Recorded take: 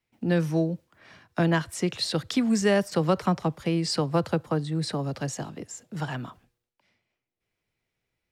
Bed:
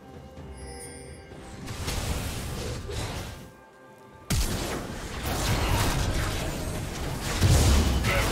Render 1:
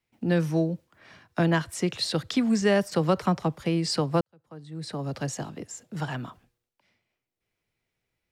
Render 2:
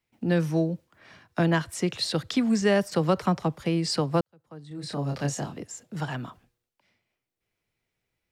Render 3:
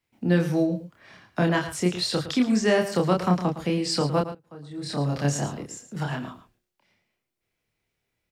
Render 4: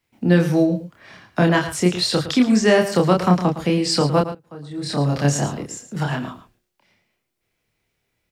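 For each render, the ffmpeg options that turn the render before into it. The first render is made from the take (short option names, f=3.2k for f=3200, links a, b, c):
-filter_complex "[0:a]asettb=1/sr,asplit=3[a][b][c];[a]atrim=end=2.304[d];[b]atrim=start=2.3:end=2.81,asetpts=PTS-STARTPTS,afade=t=in:d=0.004:c=qsin,afade=t=out:st=0.506:d=0.004:c=qsin,acrossover=split=7100[e][f];[f]acompressor=threshold=-50dB:ratio=4:attack=1:release=60[g];[e][g]amix=inputs=2:normalize=0[h];[c]atrim=start=2.806[i];[d][h]acrossfade=d=0.004:c1=hsin:c2=qsin[j];[j][i]acrossfade=d=0.004:c1=qsin:c2=hsin,asplit=2[k][l];[k]atrim=end=4.21,asetpts=PTS-STARTPTS,afade=t=out:st=4.206:d=0.004:c=hsin[m];[l]atrim=start=4.21,asetpts=PTS-STARTPTS,afade=t=in:d=0.94:c=qua[n];[m][n]concat=n=2:v=0:a=1"
-filter_complex "[0:a]asettb=1/sr,asplit=3[a][b][c];[a]atrim=end=4.684[d];[b]atrim=start=4.68:end=5.57,asetpts=PTS-STARTPTS,afade=t=in:d=0.004:c=qsin,afade=t=out:st=0.886:d=0.004:c=qsin,asplit=2[e][f];[f]adelay=28,volume=-3.5dB[g];[e][g]amix=inputs=2:normalize=0,atrim=end_sample=39249[h];[c]atrim=start=5.566[i];[d][h]acrossfade=d=0.004:c1=hsin:c2=qsin[j];[j][i]acrossfade=d=0.004:c1=qsin:c2=hsin"
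-filter_complex "[0:a]asplit=2[a][b];[b]adelay=28,volume=-3dB[c];[a][c]amix=inputs=2:normalize=0,aecho=1:1:111:0.251"
-af "volume=6dB,alimiter=limit=-3dB:level=0:latency=1"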